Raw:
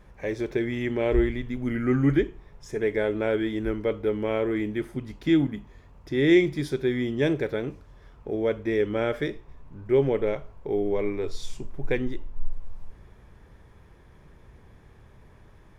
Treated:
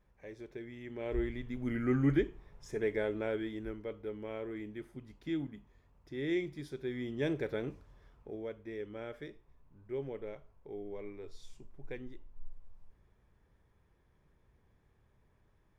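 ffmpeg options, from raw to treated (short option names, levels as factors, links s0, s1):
-af "volume=1.12,afade=t=in:st=0.84:d=0.88:silence=0.266073,afade=t=out:st=2.78:d=1.06:silence=0.398107,afade=t=in:st=6.73:d=0.95:silence=0.398107,afade=t=out:st=7.68:d=0.84:silence=0.298538"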